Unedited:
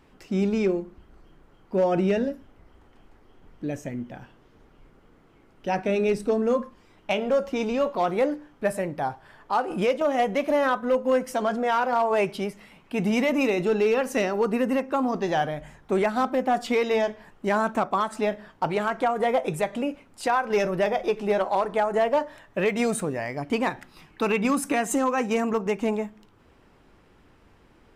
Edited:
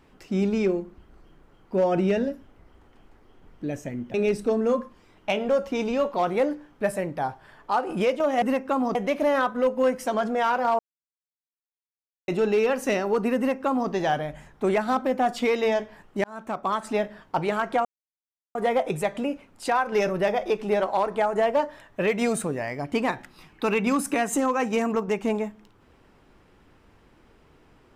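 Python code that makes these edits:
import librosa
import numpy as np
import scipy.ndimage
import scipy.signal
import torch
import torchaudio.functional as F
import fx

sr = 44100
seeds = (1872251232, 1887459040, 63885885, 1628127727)

y = fx.edit(x, sr, fx.cut(start_s=4.14, length_s=1.81),
    fx.silence(start_s=12.07, length_s=1.49),
    fx.duplicate(start_s=14.65, length_s=0.53, to_s=10.23),
    fx.fade_in_span(start_s=17.52, length_s=0.56),
    fx.insert_silence(at_s=19.13, length_s=0.7), tone=tone)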